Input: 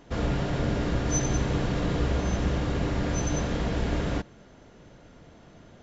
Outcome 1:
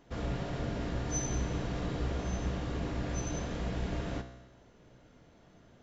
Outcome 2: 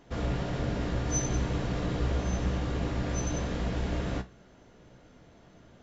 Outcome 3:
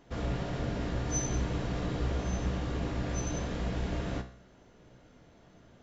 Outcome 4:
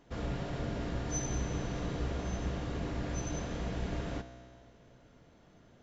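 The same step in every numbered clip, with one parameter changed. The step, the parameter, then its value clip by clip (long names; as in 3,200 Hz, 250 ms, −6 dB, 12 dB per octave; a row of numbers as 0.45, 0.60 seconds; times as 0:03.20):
tuned comb filter, decay: 1, 0.21, 0.48, 2.1 seconds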